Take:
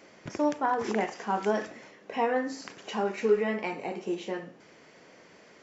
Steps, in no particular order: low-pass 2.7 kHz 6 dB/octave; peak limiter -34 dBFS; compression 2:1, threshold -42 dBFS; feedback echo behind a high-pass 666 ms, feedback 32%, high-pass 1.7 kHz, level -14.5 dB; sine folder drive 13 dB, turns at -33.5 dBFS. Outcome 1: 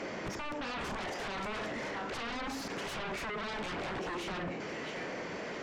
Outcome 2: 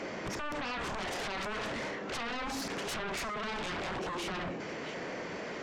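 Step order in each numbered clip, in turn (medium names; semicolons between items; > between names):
feedback echo behind a high-pass > compression > peak limiter > sine folder > low-pass; low-pass > peak limiter > feedback echo behind a high-pass > compression > sine folder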